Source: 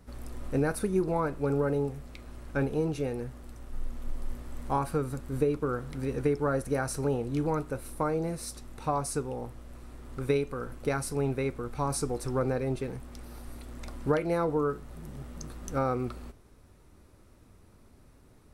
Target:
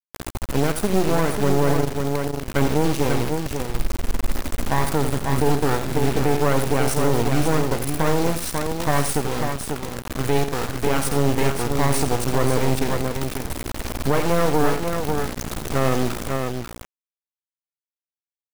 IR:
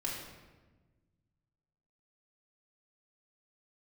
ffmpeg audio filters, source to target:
-filter_complex "[0:a]dynaudnorm=framelen=140:gausssize=13:maxgain=5dB,acrusher=bits=3:dc=4:mix=0:aa=0.000001,asplit=3[link_01][link_02][link_03];[link_01]afade=type=out:start_time=1.73:duration=0.02[link_04];[link_02]tremolo=f=25:d=0.857,afade=type=in:start_time=1.73:duration=0.02,afade=type=out:start_time=2.44:duration=0.02[link_05];[link_03]afade=type=in:start_time=2.44:duration=0.02[link_06];[link_04][link_05][link_06]amix=inputs=3:normalize=0,aecho=1:1:84|542:0.282|0.473,alimiter=level_in=14dB:limit=-1dB:release=50:level=0:latency=1,volume=-6dB"

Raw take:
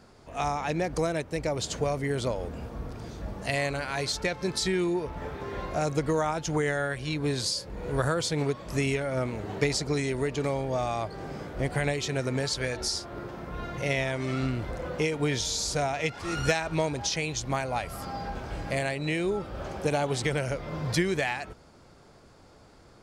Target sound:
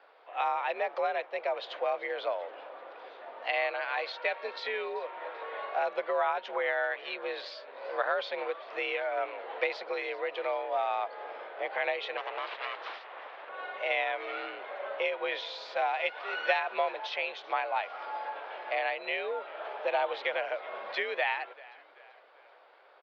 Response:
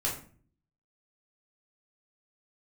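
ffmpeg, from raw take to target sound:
-filter_complex "[0:a]asettb=1/sr,asplit=3[link_01][link_02][link_03];[link_01]atrim=end=12.174[link_04];[link_02]atrim=start=12.17:end=13.49,asetpts=PTS-STARTPTS,afade=type=in:duration=0.004:curve=qsin,afade=type=out:start_time=1.316:duration=0.004:curve=qsin,aeval=exprs='abs(val(0))':channel_layout=same[link_05];[link_03]atrim=start=13.486[link_06];[link_04][link_05]acrossfade=duration=0.004:curve1=hsin:curve2=qsin[link_07];[link_07][link_06]acrossfade=duration=0.004:curve1=qsin:curve2=hsin,asplit=5[link_08][link_09][link_10][link_11][link_12];[link_09]adelay=387,afreqshift=-69,volume=-21dB[link_13];[link_10]adelay=774,afreqshift=-138,volume=-27dB[link_14];[link_11]adelay=1161,afreqshift=-207,volume=-33dB[link_15];[link_12]adelay=1548,afreqshift=-276,volume=-39.1dB[link_16];[link_08][link_13][link_14][link_15][link_16]amix=inputs=5:normalize=0,highpass=frequency=460:width_type=q:width=0.5412,highpass=frequency=460:width_type=q:width=1.307,lowpass=frequency=3500:width_type=q:width=0.5176,lowpass=frequency=3500:width_type=q:width=0.7071,lowpass=frequency=3500:width_type=q:width=1.932,afreqshift=60"

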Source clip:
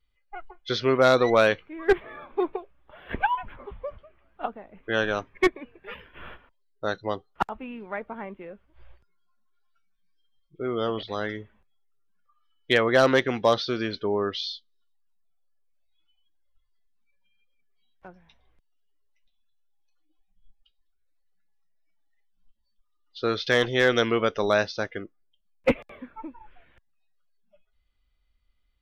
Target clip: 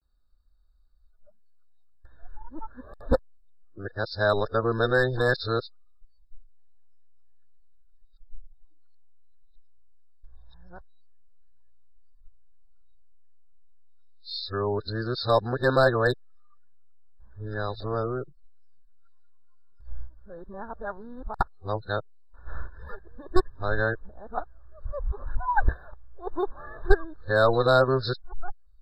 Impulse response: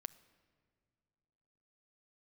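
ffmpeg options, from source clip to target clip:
-af "areverse,asubboost=boost=9.5:cutoff=73,afftfilt=real='re*eq(mod(floor(b*sr/1024/1800),2),0)':imag='im*eq(mod(floor(b*sr/1024/1800),2),0)':win_size=1024:overlap=0.75"

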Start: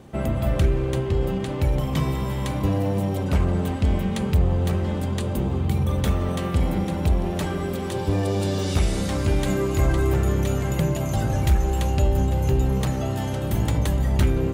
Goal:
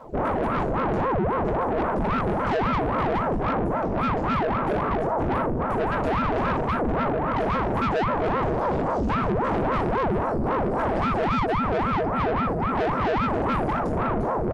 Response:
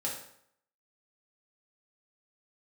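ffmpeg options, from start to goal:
-filter_complex "[0:a]equalizer=frequency=850:width_type=o:width=0.99:gain=10,asplit=2[link_01][link_02];[link_02]adelay=307,lowpass=frequency=1100:poles=1,volume=-9dB,asplit=2[link_03][link_04];[link_04]adelay=307,lowpass=frequency=1100:poles=1,volume=0.33,asplit=2[link_05][link_06];[link_06]adelay=307,lowpass=frequency=1100:poles=1,volume=0.33,asplit=2[link_07][link_08];[link_08]adelay=307,lowpass=frequency=1100:poles=1,volume=0.33[link_09];[link_01][link_03][link_05][link_07][link_09]amix=inputs=5:normalize=0,aphaser=in_gain=1:out_gain=1:delay=3.9:decay=0.57:speed=0.57:type=sinusoidal,aeval=exprs='val(0)+0.01*(sin(2*PI*60*n/s)+sin(2*PI*2*60*n/s)/2+sin(2*PI*3*60*n/s)/3+sin(2*PI*4*60*n/s)/4+sin(2*PI*5*60*n/s)/5)':channel_layout=same,afwtdn=0.0794,acontrast=48,asetrate=31183,aresample=44100,atempo=1.41421[link_10];[1:a]atrim=start_sample=2205[link_11];[link_10][link_11]afir=irnorm=-1:irlink=0,acompressor=threshold=-9dB:ratio=8,highpass=100,asoftclip=type=tanh:threshold=-18.5dB,aeval=exprs='val(0)*sin(2*PI*440*n/s+440*0.85/3.7*sin(2*PI*3.7*n/s))':channel_layout=same"

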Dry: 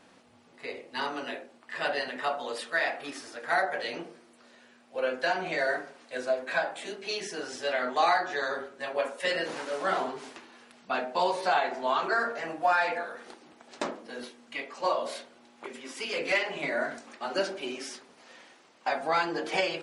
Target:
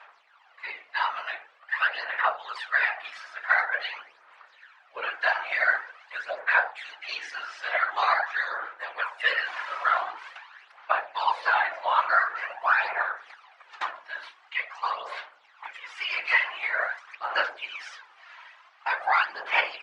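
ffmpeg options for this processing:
ffmpeg -i in.wav -filter_complex "[0:a]aphaser=in_gain=1:out_gain=1:delay=3.1:decay=0.65:speed=0.46:type=sinusoidal,highpass=frequency=970:width=0.5412,highpass=frequency=970:width=1.3066,asplit=2[link_01][link_02];[link_02]alimiter=limit=-18dB:level=0:latency=1:release=424,volume=0dB[link_03];[link_01][link_03]amix=inputs=2:normalize=0,afftfilt=real='hypot(re,im)*cos(2*PI*random(0))':imag='hypot(re,im)*sin(2*PI*random(1))':win_size=512:overlap=0.75,lowpass=2300,volume=6.5dB" out.wav

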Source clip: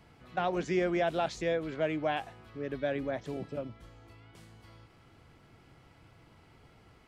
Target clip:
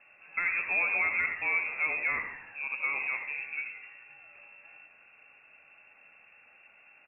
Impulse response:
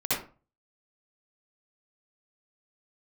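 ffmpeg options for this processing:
-filter_complex "[0:a]lowpass=frequency=2400:width_type=q:width=0.5098,lowpass=frequency=2400:width_type=q:width=0.6013,lowpass=frequency=2400:width_type=q:width=0.9,lowpass=frequency=2400:width_type=q:width=2.563,afreqshift=-2800,asplit=8[link_01][link_02][link_03][link_04][link_05][link_06][link_07][link_08];[link_02]adelay=85,afreqshift=-88,volume=-11dB[link_09];[link_03]adelay=170,afreqshift=-176,volume=-15.6dB[link_10];[link_04]adelay=255,afreqshift=-264,volume=-20.2dB[link_11];[link_05]adelay=340,afreqshift=-352,volume=-24.7dB[link_12];[link_06]adelay=425,afreqshift=-440,volume=-29.3dB[link_13];[link_07]adelay=510,afreqshift=-528,volume=-33.9dB[link_14];[link_08]adelay=595,afreqshift=-616,volume=-38.5dB[link_15];[link_01][link_09][link_10][link_11][link_12][link_13][link_14][link_15]amix=inputs=8:normalize=0,asplit=2[link_16][link_17];[1:a]atrim=start_sample=2205,lowpass=2100[link_18];[link_17][link_18]afir=irnorm=-1:irlink=0,volume=-17.5dB[link_19];[link_16][link_19]amix=inputs=2:normalize=0"

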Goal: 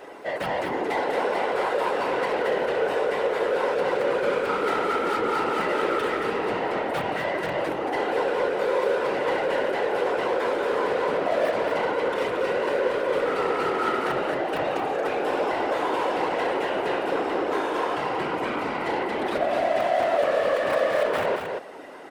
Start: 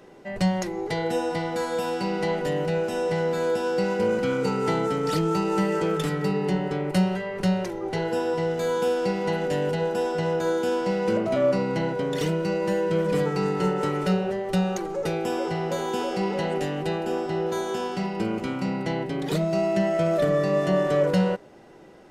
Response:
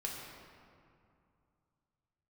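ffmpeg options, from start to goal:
-filter_complex "[0:a]aeval=exprs='(mod(4.47*val(0)+1,2)-1)/4.47':channel_layout=same,acrossover=split=3300[link_01][link_02];[link_02]acompressor=threshold=-54dB:ratio=4:attack=1:release=60[link_03];[link_01][link_03]amix=inputs=2:normalize=0,asplit=2[link_04][link_05];[link_05]highpass=frequency=720:poles=1,volume=25dB,asoftclip=type=tanh:threshold=-12dB[link_06];[link_04][link_06]amix=inputs=2:normalize=0,lowpass=frequency=1900:poles=1,volume=-6dB,highpass=370,afftfilt=real='hypot(re,im)*cos(2*PI*random(0))':imag='hypot(re,im)*sin(2*PI*random(1))':win_size=512:overlap=0.75,aexciter=amount=2.8:drive=5.5:freq=8500,asplit=2[link_07][link_08];[link_08]aecho=0:1:227:0.531[link_09];[link_07][link_09]amix=inputs=2:normalize=0,volume=1dB"

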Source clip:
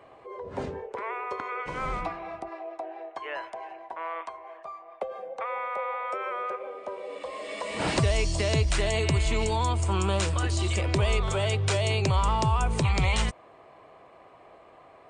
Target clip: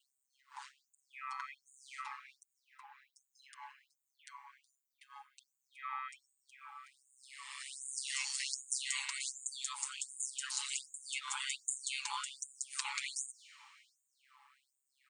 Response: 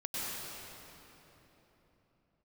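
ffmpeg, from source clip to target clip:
-filter_complex "[0:a]aemphasis=mode=production:type=50fm,aecho=1:1:6.5:0.88,aeval=exprs='val(0)*sin(2*PI*67*n/s)':channel_layout=same,asplit=2[link_01][link_02];[1:a]atrim=start_sample=2205,lowpass=6300[link_03];[link_02][link_03]afir=irnorm=-1:irlink=0,volume=-19.5dB[link_04];[link_01][link_04]amix=inputs=2:normalize=0,afftfilt=real='re*gte(b*sr/1024,790*pow(6700/790,0.5+0.5*sin(2*PI*1.3*pts/sr)))':imag='im*gte(b*sr/1024,790*pow(6700/790,0.5+0.5*sin(2*PI*1.3*pts/sr)))':win_size=1024:overlap=0.75,volume=-8dB"

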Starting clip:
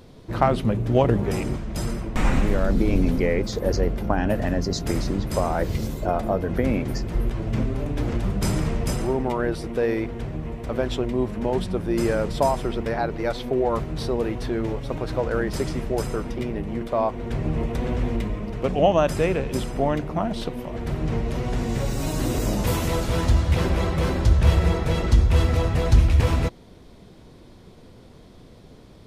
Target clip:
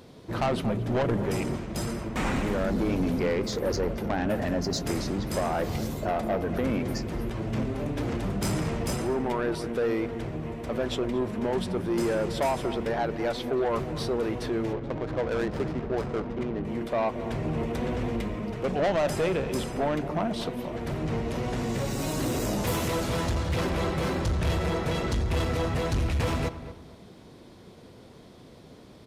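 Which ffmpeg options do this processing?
ffmpeg -i in.wav -filter_complex "[0:a]highpass=frequency=140:poles=1,asoftclip=type=tanh:threshold=-21dB,asettb=1/sr,asplit=3[link_01][link_02][link_03];[link_01]atrim=end=14.734[link_04];[link_02]atrim=start=14.73:end=16.65,asetpts=PTS-STARTPTS,afade=type=in:duration=0.004:curve=qsin,afade=type=out:start_time=1.916:duration=0.004:curve=qsin,adynamicsmooth=sensitivity=5.5:basefreq=630[link_05];[link_03]atrim=start=16.646[link_06];[link_04][link_05]acrossfade=duration=0.004:curve1=hsin:curve2=qsin[link_07];[link_07][link_06]acrossfade=duration=0.004:curve1=qsin:curve2=hsin,asplit=2[link_08][link_09];[link_09]adelay=229,lowpass=frequency=1700:poles=1,volume=-12dB,asplit=2[link_10][link_11];[link_11]adelay=229,lowpass=frequency=1700:poles=1,volume=0.34,asplit=2[link_12][link_13];[link_13]adelay=229,lowpass=frequency=1700:poles=1,volume=0.34[link_14];[link_08][link_10][link_12][link_14]amix=inputs=4:normalize=0" out.wav

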